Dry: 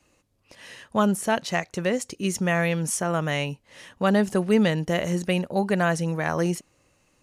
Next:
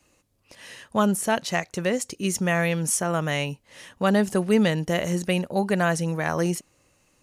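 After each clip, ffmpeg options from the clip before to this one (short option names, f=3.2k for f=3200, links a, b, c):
-af "highshelf=f=6.8k:g=5.5"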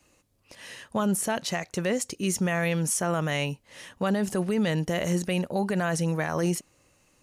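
-af "alimiter=limit=-17.5dB:level=0:latency=1:release=23"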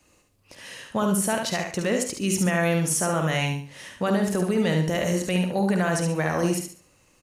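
-filter_complex "[0:a]asplit=2[a][b];[b]adelay=50,volume=-10dB[c];[a][c]amix=inputs=2:normalize=0,aecho=1:1:71|142|213|284:0.562|0.163|0.0473|0.0137,volume=1.5dB"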